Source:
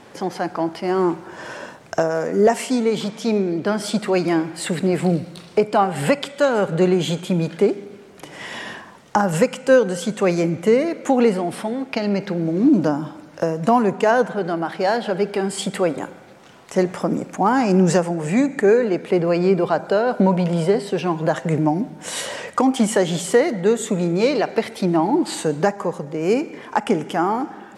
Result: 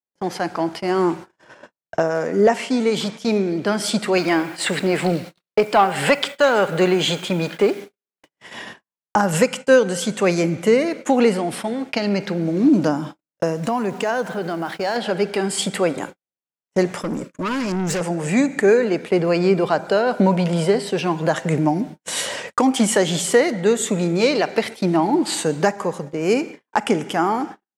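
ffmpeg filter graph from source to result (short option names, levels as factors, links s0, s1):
-filter_complex "[0:a]asettb=1/sr,asplit=3[s0][s1][s2];[s0]atrim=end=1.444[s3];[s1]atrim=start=1.44:end=2.8,asetpts=PTS-STARTPTS,afade=t=in:d=0.004:c=qsin,afade=t=out:st=1.356:d=0.004:c=qsin,acrossover=split=5500[s4][s5];[s5]acompressor=threshold=0.0112:ratio=4:attack=1:release=60[s6];[s4][s6]amix=inputs=2:normalize=0,highshelf=f=5100:g=-8.5[s7];[s2]atrim=start=2.796[s8];[s3][s7]acrossfade=d=0.004:c1=hsin:c2=qsin[s9];[s9][s8]acrossfade=d=0.004:c1=qsin:c2=hsin,asettb=1/sr,asplit=3[s10][s11][s12];[s10]atrim=end=4.174[s13];[s11]atrim=start=4.17:end=8.29,asetpts=PTS-STARTPTS,afade=t=in:d=0.004:c=qsin,afade=t=out:st=4.116:d=0.004:c=qsin,asplit=2[s14][s15];[s15]highpass=f=720:p=1,volume=3.16,asoftclip=type=tanh:threshold=0.562[s16];[s14][s16]amix=inputs=2:normalize=0,lowpass=f=3200:p=1,volume=0.501,acrusher=bits=7:mix=0:aa=0.5[s17];[s12]atrim=start=8.286[s18];[s13][s17]acrossfade=d=0.004:c1=hsin:c2=qsin[s19];[s19][s18]acrossfade=d=0.004:c1=qsin:c2=hsin,asettb=1/sr,asplit=3[s20][s21][s22];[s20]atrim=end=13.574[s23];[s21]atrim=start=13.57:end=14.96,asetpts=PTS-STARTPTS,afade=t=in:d=0.004:c=qsin,afade=t=out:st=1.386:d=0.004:c=qsin,acompressor=threshold=0.0794:ratio=2:attack=3.2:release=140:knee=1:detection=peak,aeval=exprs='val(0)*gte(abs(val(0)),0.00562)':c=same[s24];[s22]atrim=start=14.956[s25];[s23][s24]acrossfade=d=0.004:c1=hsin:c2=qsin[s26];[s26][s25]acrossfade=d=0.004:c1=qsin:c2=hsin,asettb=1/sr,asplit=3[s27][s28][s29];[s27]atrim=end=17.014[s30];[s28]atrim=start=17.01:end=18.01,asetpts=PTS-STARTPTS,afade=t=in:d=0.004:c=qsin,afade=t=out:st=0.996:d=0.004:c=qsin,asuperstop=centerf=780:order=12:qfactor=2.5,aeval=exprs='(tanh(10*val(0)+0.15)-tanh(0.15))/10':c=same[s31];[s29]atrim=start=18.006[s32];[s30][s31]acrossfade=d=0.004:c1=hsin:c2=qsin[s33];[s33][s32]acrossfade=d=0.004:c1=qsin:c2=hsin,agate=range=0.00126:threshold=0.0282:ratio=16:detection=peak,adynamicequalizer=threshold=0.0224:dfrequency=1600:dqfactor=0.7:tfrequency=1600:tqfactor=0.7:attack=5:release=100:ratio=0.375:range=2.5:mode=boostabove:tftype=highshelf"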